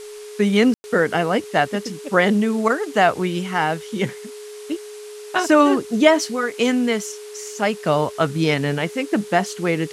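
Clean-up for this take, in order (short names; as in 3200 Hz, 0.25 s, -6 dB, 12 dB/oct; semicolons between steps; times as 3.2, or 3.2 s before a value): notch 420 Hz, Q 30; room tone fill 0.74–0.84; noise print and reduce 28 dB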